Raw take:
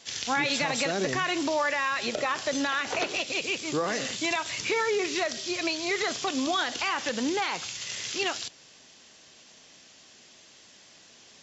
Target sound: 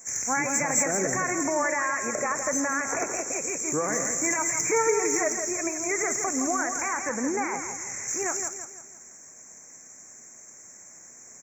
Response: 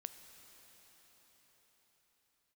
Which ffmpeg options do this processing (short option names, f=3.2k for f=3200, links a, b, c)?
-filter_complex "[0:a]asettb=1/sr,asplit=3[a][b][c];[a]atrim=end=4.264[d];[b]atrim=start=4.26:end=5.29,asetpts=PTS-STARTPTS,afade=t=in:d=0.004:c=qsin,afade=t=out:st=1.026:d=0.004:c=qsin,aecho=1:1:6.5:0.82,atrim=end_sample=45423[e];[c]atrim=start=5.286[f];[d][e]acrossfade=d=0.004:c1=hsin:c2=qsin[g];[g][f]acrossfade=d=0.004:c1=qsin:c2=hsin,asettb=1/sr,asplit=3[h][i][j];[h]atrim=end=6.964[k];[i]atrim=start=6.96:end=8.08,asetpts=PTS-STARTPTS,afade=t=in:d=0.004:c=qsin,afade=t=out:st=1.116:d=0.004:c=qsin,acrossover=split=5000[l][m];[m]acompressor=threshold=-47dB:ratio=4:attack=1:release=60[n];[l][n]amix=inputs=2:normalize=0[o];[j]atrim=start=8.076[p];[k][o]acrossfade=d=0.004:c1=hsin:c2=qsin[q];[q][p]acrossfade=d=0.004:c1=qsin:c2=hsin,aexciter=amount=3.1:drive=10:freq=6.8k,asuperstop=centerf=3600:order=12:qfactor=1.1,aecho=1:1:166|332|498|664|830:0.422|0.173|0.0709|0.0291|0.0119"